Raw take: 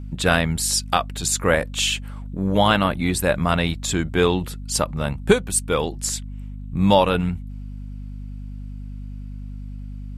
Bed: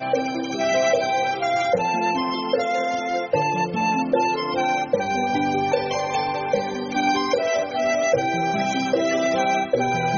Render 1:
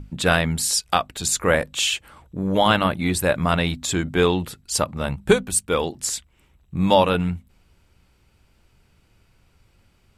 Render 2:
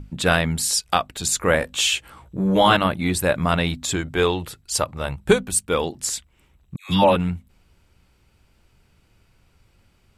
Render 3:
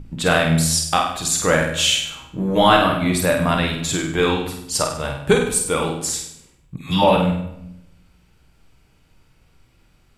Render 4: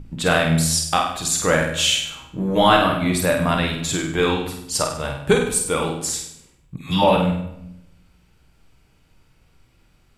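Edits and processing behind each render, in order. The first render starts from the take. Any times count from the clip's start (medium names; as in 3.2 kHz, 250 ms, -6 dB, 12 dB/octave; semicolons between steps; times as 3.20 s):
hum notches 50/100/150/200/250 Hz
1.60–2.77 s: doubling 16 ms -2.5 dB; 3.96–5.29 s: peaking EQ 210 Hz -9 dB; 6.76–7.16 s: phase dispersion lows, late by 136 ms, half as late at 1.1 kHz
flutter echo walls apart 8.5 m, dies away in 0.58 s; simulated room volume 190 m³, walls mixed, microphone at 0.48 m
trim -1 dB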